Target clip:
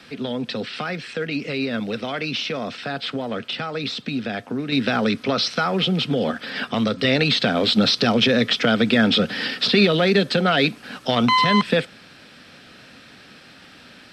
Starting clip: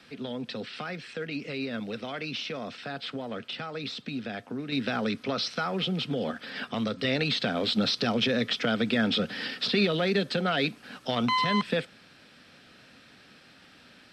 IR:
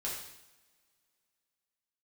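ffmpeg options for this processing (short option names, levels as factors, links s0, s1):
-af "volume=2.66"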